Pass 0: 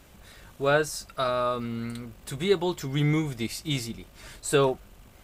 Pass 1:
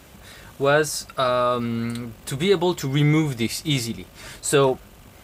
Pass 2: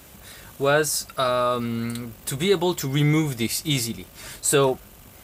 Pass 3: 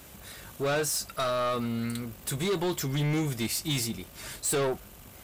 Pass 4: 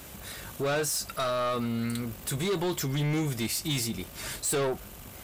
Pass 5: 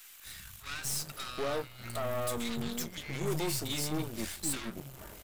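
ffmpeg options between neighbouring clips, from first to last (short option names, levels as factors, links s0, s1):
-filter_complex "[0:a]highpass=60,asplit=2[s0][s1];[s1]alimiter=limit=0.112:level=0:latency=1:release=35,volume=1.26[s2];[s0][s2]amix=inputs=2:normalize=0"
-af "highshelf=f=8000:g=10.5,volume=0.841"
-af "asoftclip=type=tanh:threshold=0.0794,volume=0.794"
-af "alimiter=level_in=1.68:limit=0.0631:level=0:latency=1:release=94,volume=0.596,volume=1.58"
-filter_complex "[0:a]acrossover=split=160|1300[s0][s1][s2];[s0]adelay=250[s3];[s1]adelay=780[s4];[s3][s4][s2]amix=inputs=3:normalize=0,aeval=exprs='0.133*(cos(1*acos(clip(val(0)/0.133,-1,1)))-cos(1*PI/2))+0.0168*(cos(8*acos(clip(val(0)/0.133,-1,1)))-cos(8*PI/2))':c=same,volume=0.562"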